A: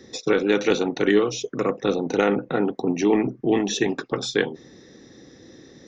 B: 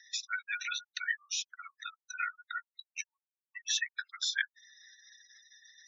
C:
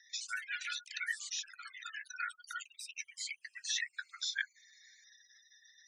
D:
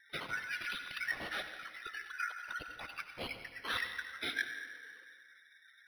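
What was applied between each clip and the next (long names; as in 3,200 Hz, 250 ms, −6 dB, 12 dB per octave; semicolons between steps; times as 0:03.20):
gate on every frequency bin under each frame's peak −20 dB strong; Butterworth high-pass 1,400 Hz 96 dB per octave; in parallel at −2.5 dB: downward compressor, threshold −40 dBFS, peak gain reduction 17 dB; on the sum: level −4 dB
delay with pitch and tempo change per echo 95 ms, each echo +3 semitones, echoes 3, each echo −6 dB; level −4.5 dB
tape wow and flutter 16 cents; on a send at −5.5 dB: convolution reverb RT60 2.8 s, pre-delay 73 ms; on the sum: linearly interpolated sample-rate reduction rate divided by 6×; level +2 dB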